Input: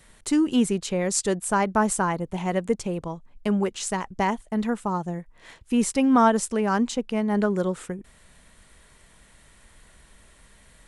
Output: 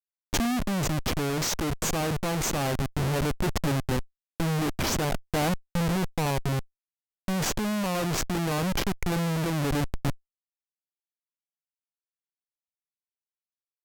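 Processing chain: Schmitt trigger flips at -29.5 dBFS; wide varispeed 0.786×; vocal rider 0.5 s

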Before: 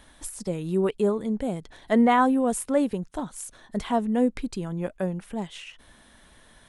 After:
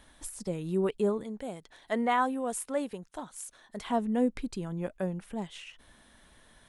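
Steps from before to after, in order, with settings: 1.23–3.85 low shelf 340 Hz -11.5 dB; gain -4.5 dB

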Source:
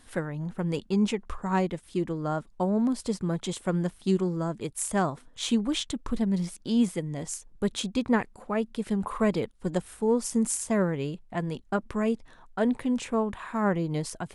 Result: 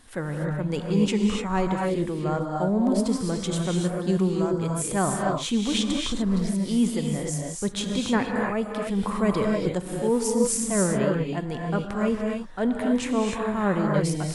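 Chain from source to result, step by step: transient shaper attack -4 dB, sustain +2 dB; non-linear reverb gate 0.32 s rising, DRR 0 dB; gain +2 dB

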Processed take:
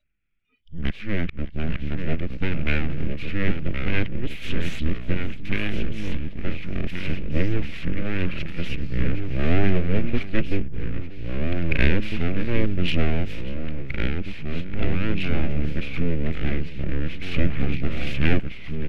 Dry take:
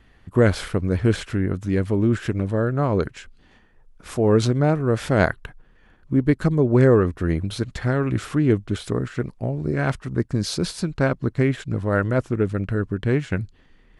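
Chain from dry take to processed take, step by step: whole clip reversed; full-wave rectifier; echo 0.437 s -18.5 dB; echoes that change speed 0.554 s, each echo -2 st, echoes 3, each echo -6 dB; wow and flutter 22 cents; in parallel at -4 dB: Schmitt trigger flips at -13.5 dBFS; on the sum: EQ curve 110 Hz 0 dB, 730 Hz -8 dB, 1300 Hz -18 dB, 3300 Hz +8 dB, 9300 Hz -18 dB; speed mistake 45 rpm record played at 33 rpm; spectral noise reduction 23 dB; gain +2 dB

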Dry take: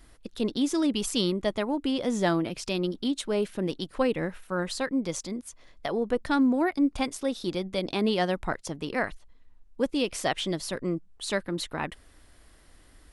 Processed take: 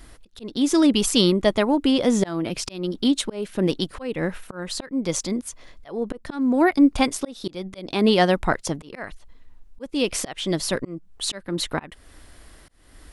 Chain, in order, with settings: auto swell 0.349 s; gain +8.5 dB

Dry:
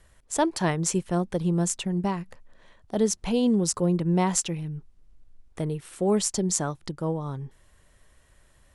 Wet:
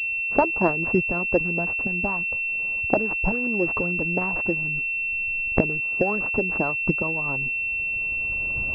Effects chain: median filter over 25 samples; recorder AGC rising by 15 dB/s; harmonic-percussive split harmonic -17 dB; pulse-width modulation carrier 2700 Hz; gain +9 dB

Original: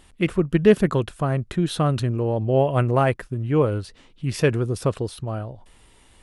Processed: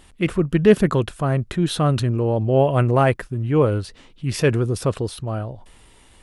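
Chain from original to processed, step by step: transient shaper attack -3 dB, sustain +1 dB; gain +3 dB

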